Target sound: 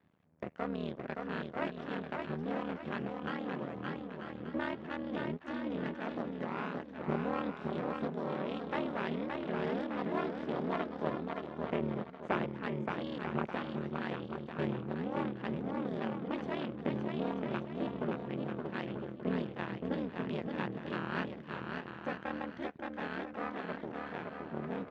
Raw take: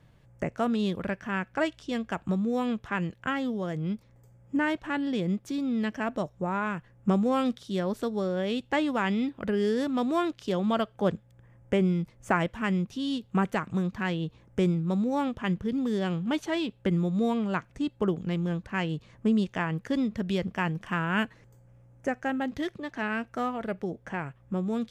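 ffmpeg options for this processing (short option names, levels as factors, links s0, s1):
-af "aeval=exprs='val(0)*sin(2*PI*38*n/s)':c=same,aeval=exprs='max(val(0),0)':c=same,highpass=150,lowpass=2700,aecho=1:1:570|940.5|1181|1338|1440:0.631|0.398|0.251|0.158|0.1,volume=0.794"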